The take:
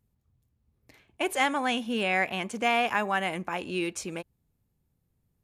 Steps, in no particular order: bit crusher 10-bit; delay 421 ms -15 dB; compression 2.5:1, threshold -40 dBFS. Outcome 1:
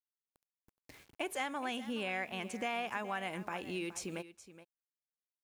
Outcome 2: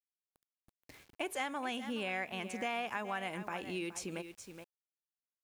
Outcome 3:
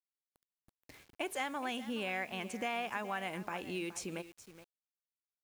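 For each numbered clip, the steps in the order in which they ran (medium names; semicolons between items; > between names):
bit crusher > compression > delay; delay > bit crusher > compression; compression > delay > bit crusher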